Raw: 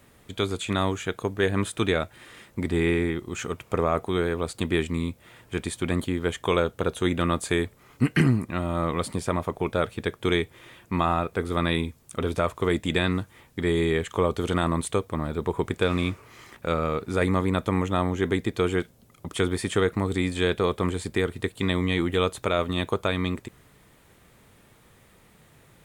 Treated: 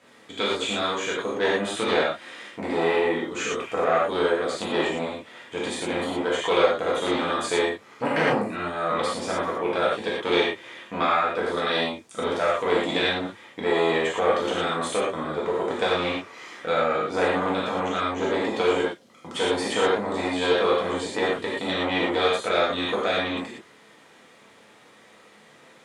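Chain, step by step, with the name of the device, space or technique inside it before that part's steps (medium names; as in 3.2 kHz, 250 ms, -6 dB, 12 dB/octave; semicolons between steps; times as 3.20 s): public-address speaker with an overloaded transformer (transformer saturation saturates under 910 Hz; band-pass 300–6100 Hz); gated-style reverb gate 140 ms flat, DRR -6.5 dB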